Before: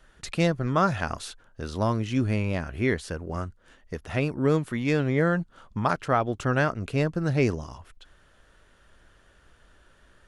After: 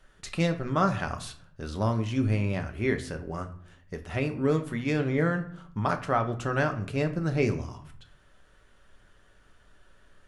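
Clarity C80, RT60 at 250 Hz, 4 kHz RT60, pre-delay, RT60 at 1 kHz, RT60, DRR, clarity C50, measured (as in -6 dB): 17.0 dB, 0.85 s, 0.40 s, 5 ms, 0.60 s, 0.60 s, 5.5 dB, 13.0 dB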